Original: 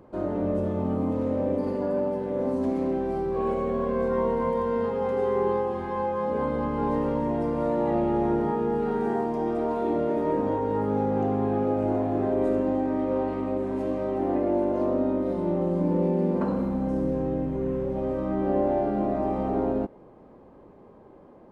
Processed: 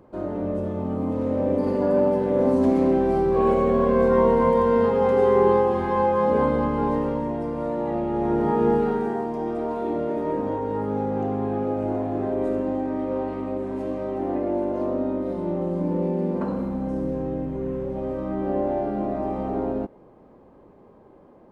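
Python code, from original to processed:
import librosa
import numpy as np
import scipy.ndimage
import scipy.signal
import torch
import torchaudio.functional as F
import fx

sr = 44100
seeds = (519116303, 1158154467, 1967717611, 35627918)

y = fx.gain(x, sr, db=fx.line((0.89, -0.5), (2.04, 7.0), (6.35, 7.0), (7.4, -1.5), (8.09, -1.5), (8.69, 7.0), (9.13, -0.5)))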